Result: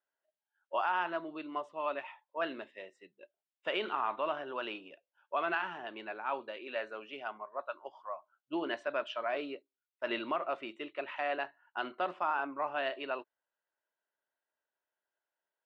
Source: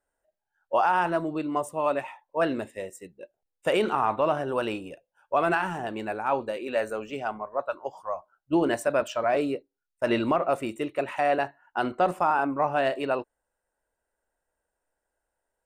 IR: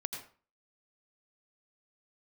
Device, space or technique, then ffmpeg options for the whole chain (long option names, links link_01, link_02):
phone earpiece: -af "highpass=420,equalizer=frequency=490:width_type=q:width=4:gain=-8,equalizer=frequency=780:width_type=q:width=4:gain=-6,equalizer=frequency=3200:width_type=q:width=4:gain=5,lowpass=frequency=4100:width=0.5412,lowpass=frequency=4100:width=1.3066,volume=-6dB"